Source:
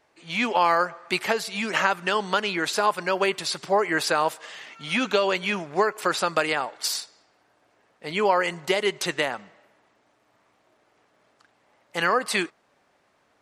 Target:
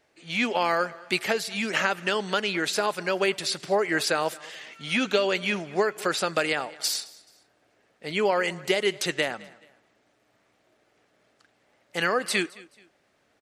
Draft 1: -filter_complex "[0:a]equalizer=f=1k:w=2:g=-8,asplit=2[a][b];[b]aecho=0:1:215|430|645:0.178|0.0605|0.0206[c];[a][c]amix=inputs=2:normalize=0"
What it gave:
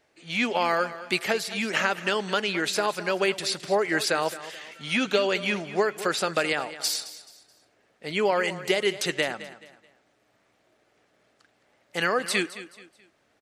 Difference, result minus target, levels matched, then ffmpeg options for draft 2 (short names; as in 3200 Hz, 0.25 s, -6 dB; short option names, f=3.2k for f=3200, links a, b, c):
echo-to-direct +7 dB
-filter_complex "[0:a]equalizer=f=1k:w=2:g=-8,asplit=2[a][b];[b]aecho=0:1:215|430:0.0794|0.027[c];[a][c]amix=inputs=2:normalize=0"